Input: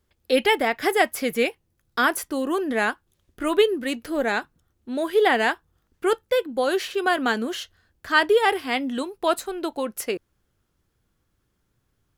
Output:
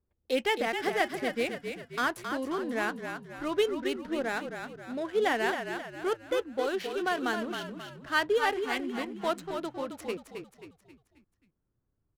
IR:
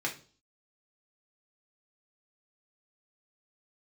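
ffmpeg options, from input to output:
-filter_complex "[0:a]adynamicsmooth=sensitivity=7.5:basefreq=1100,asplit=6[link_01][link_02][link_03][link_04][link_05][link_06];[link_02]adelay=267,afreqshift=-38,volume=-7dB[link_07];[link_03]adelay=534,afreqshift=-76,volume=-13.9dB[link_08];[link_04]adelay=801,afreqshift=-114,volume=-20.9dB[link_09];[link_05]adelay=1068,afreqshift=-152,volume=-27.8dB[link_10];[link_06]adelay=1335,afreqshift=-190,volume=-34.7dB[link_11];[link_01][link_07][link_08][link_09][link_10][link_11]amix=inputs=6:normalize=0,volume=-8.5dB"

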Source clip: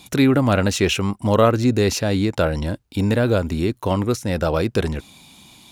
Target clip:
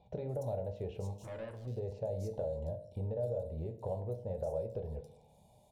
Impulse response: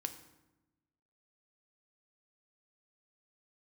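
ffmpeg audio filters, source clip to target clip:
-filter_complex "[0:a]firequalizer=gain_entry='entry(110,0);entry(300,-20);entry(440,4);entry(790,2);entry(1200,-26);entry(3400,-20);entry(8600,-14)':delay=0.05:min_phase=1,acompressor=threshold=-27dB:ratio=6,asettb=1/sr,asplit=3[link_01][link_02][link_03];[link_01]atrim=end=1.214[link_04];[link_02]atrim=start=1.21:end=1.67,asetpts=PTS-STARTPTS,afade=type=in:duration=0.004:curve=qsin,afade=type=out:start_time=0.456:duration=0.004:curve=qsin,asoftclip=type=hard:threshold=-35.5dB[link_05];[link_03]atrim=start=1.666[link_06];[link_04][link_05]acrossfade=duration=0.004:curve1=hsin:curve2=qsin[link_07];[link_07][link_06]acrossfade=duration=0.004:curve1=qsin:curve2=hsin,asettb=1/sr,asplit=3[link_08][link_09][link_10];[link_08]atrim=end=3.064[link_11];[link_09]atrim=start=3.06:end=3.47,asetpts=PTS-STARTPTS,afade=type=in:duration=0.004:curve=qsin,afade=type=out:start_time=0.406:duration=0.004:curve=qsin,bandreject=frequency=2200:width=8.6[link_12];[link_10]atrim=start=3.466[link_13];[link_11][link_12]acrossfade=duration=0.004:curve1=hsin:curve2=qsin[link_14];[link_14][link_13]acrossfade=duration=0.004:curve1=qsin:curve2=hsin,acrossover=split=3900[link_15][link_16];[link_16]adelay=290[link_17];[link_15][link_17]amix=inputs=2:normalize=0[link_18];[1:a]atrim=start_sample=2205,asetrate=83790,aresample=44100[link_19];[link_18][link_19]afir=irnorm=-1:irlink=0,volume=-2dB"

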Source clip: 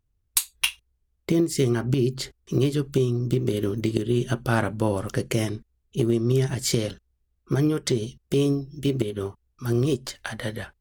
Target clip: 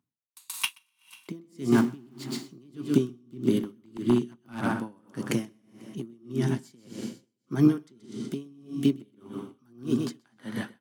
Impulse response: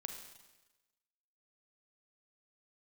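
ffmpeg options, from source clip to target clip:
-filter_complex "[0:a]asettb=1/sr,asplit=3[link_01][link_02][link_03];[link_01]atrim=end=1.724[link_04];[link_02]atrim=start=1.72:end=2.24,asetpts=PTS-STARTPTS,afade=type=in:duration=0.004:curve=qsin,afade=type=out:start_time=0.516:duration=0.004:curve=qsin,aeval=exprs='val(0)+0.5*0.0473*sgn(val(0))':channel_layout=same[link_05];[link_03]atrim=start=2.236[link_06];[link_04][link_05]acrossfade=duration=0.004:curve1=hsin:curve2=qsin[link_07];[link_07][link_06]acrossfade=duration=0.004:curve1=qsin:curve2=hsin,highpass=frequency=130:width=0.5412,highpass=frequency=130:width=1.3066,asplit=2[link_08][link_09];[1:a]atrim=start_sample=2205,adelay=128[link_10];[link_09][link_10]afir=irnorm=-1:irlink=0,volume=-4.5dB[link_11];[link_08][link_11]amix=inputs=2:normalize=0,asettb=1/sr,asplit=3[link_12][link_13][link_14];[link_12]atrim=end=3.584[link_15];[link_13]atrim=start=3.58:end=4.79,asetpts=PTS-STARTPTS,afade=type=in:duration=0.004:curve=qsin,afade=type=out:start_time=1.206:duration=0.004:curve=qsin,aeval=exprs='0.158*(abs(mod(val(0)/0.158+3,4)-2)-1)':channel_layout=same[link_16];[link_14]atrim=start=4.786[link_17];[link_15][link_16]acrossfade=duration=0.004:curve1=hsin:curve2=qsin[link_18];[link_18][link_17]acrossfade=duration=0.004:curve1=qsin:curve2=hsin,equalizer=frequency=250:width_type=o:width=1:gain=12,equalizer=frequency=500:width_type=o:width=1:gain=-7,equalizer=frequency=1000:width_type=o:width=1:gain=7,aecho=1:1:246|492|738|984:0.112|0.0539|0.0259|0.0124,aeval=exprs='val(0)*pow(10,-35*(0.5-0.5*cos(2*PI*1.7*n/s))/20)':channel_layout=same,volume=-2.5dB"

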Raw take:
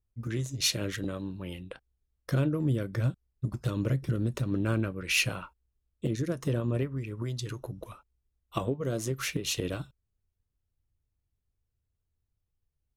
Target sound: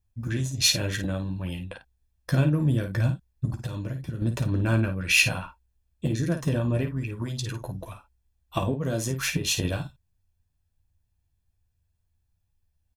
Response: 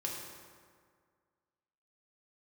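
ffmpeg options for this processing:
-filter_complex "[0:a]aecho=1:1:1.2:0.46,aecho=1:1:12|53:0.447|0.376,asettb=1/sr,asplit=3[link_01][link_02][link_03];[link_01]atrim=end=3.504[link_04];[link_02]atrim=start=3.5:end=4.22,asetpts=PTS-STARTPTS,afade=type=in:duration=0.004:curve=qsin,afade=type=out:start_time=0.716:duration=0.004:curve=qsin,acompressor=threshold=-32dB:ratio=12[link_05];[link_03]atrim=start=4.216[link_06];[link_04][link_05]acrossfade=duration=0.004:curve1=hsin:curve2=qsin[link_07];[link_07][link_06]acrossfade=duration=0.004:curve1=qsin:curve2=hsin,volume=3.5dB"

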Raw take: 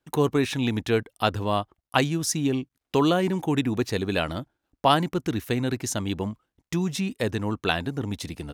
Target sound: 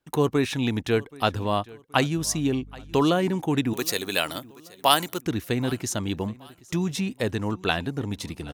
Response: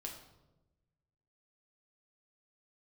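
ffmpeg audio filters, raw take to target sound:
-filter_complex "[0:a]asettb=1/sr,asplit=3[link_01][link_02][link_03];[link_01]atrim=end=3.734[link_04];[link_02]atrim=start=3.73:end=5.22,asetpts=PTS-STARTPTS,afade=type=in:duration=0.004:curve=qsin,afade=type=out:start_time=1.486:duration=0.004:curve=qsin,aemphasis=mode=production:type=riaa[link_05];[link_03]atrim=start=5.216[link_06];[link_04][link_05]acrossfade=duration=0.004:curve1=hsin:curve2=qsin[link_07];[link_07][link_06]acrossfade=duration=0.004:curve1=qsin:curve2=hsin,aecho=1:1:776|1552|2328:0.0794|0.0286|0.0103,asettb=1/sr,asplit=3[link_08][link_09][link_10];[link_08]atrim=end=2.174[link_11];[link_09]atrim=start=2.17:end=3.01,asetpts=PTS-STARTPTS,afade=type=in:duration=0.004:curve=qsin,afade=type=out:start_time=0.836:duration=0.004:curve=qsin,aeval=exprs='val(0)+0.00708*(sin(2*PI*50*n/s)+sin(2*PI*2*50*n/s)/2+sin(2*PI*3*50*n/s)/3+sin(2*PI*4*50*n/s)/4+sin(2*PI*5*50*n/s)/5)':channel_layout=same[link_12];[link_10]atrim=start=3.006[link_13];[link_11][link_12]acrossfade=duration=0.004:curve1=hsin:curve2=qsin[link_14];[link_14][link_13]acrossfade=duration=0.004:curve1=qsin:curve2=hsin"

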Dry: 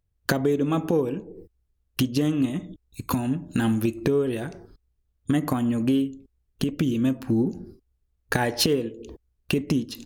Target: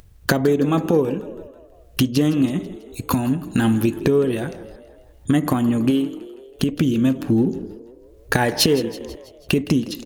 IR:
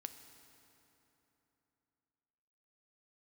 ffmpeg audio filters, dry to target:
-filter_complex "[0:a]asettb=1/sr,asplit=3[link_01][link_02][link_03];[link_01]atrim=end=5.904[link_04];[link_02]atrim=start=5.9:end=6.63,asetpts=PTS-STARTPTS,afade=type=in:duration=0.004:curve=qsin,afade=type=out:start_time=0.726:duration=0.004:curve=qsin,lowshelf=frequency=140:gain=-9.5[link_05];[link_03]atrim=start=6.626[link_06];[link_04][link_05]acrossfade=duration=0.004:curve1=hsin:curve2=qsin[link_07];[link_07][link_06]acrossfade=duration=0.004:curve1=qsin:curve2=hsin,acompressor=mode=upward:threshold=-37dB:ratio=2.5,asplit=6[link_08][link_09][link_10][link_11][link_12][link_13];[link_09]adelay=163,afreqshift=42,volume=-17dB[link_14];[link_10]adelay=326,afreqshift=84,volume=-22.2dB[link_15];[link_11]adelay=489,afreqshift=126,volume=-27.4dB[link_16];[link_12]adelay=652,afreqshift=168,volume=-32.6dB[link_17];[link_13]adelay=815,afreqshift=210,volume=-37.8dB[link_18];[link_08][link_14][link_15][link_16][link_17][link_18]amix=inputs=6:normalize=0,volume=5dB"

